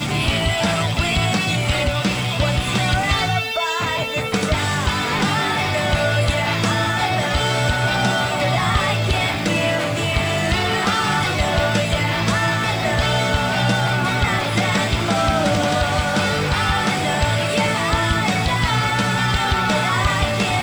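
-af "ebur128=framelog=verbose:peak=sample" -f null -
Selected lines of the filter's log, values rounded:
Integrated loudness:
  I:         -18.7 LUFS
  Threshold: -28.7 LUFS
Loudness range:
  LRA:         1.1 LU
  Threshold: -38.8 LUFS
  LRA low:   -19.4 LUFS
  LRA high:  -18.4 LUFS
Sample peak:
  Peak:       -7.0 dBFS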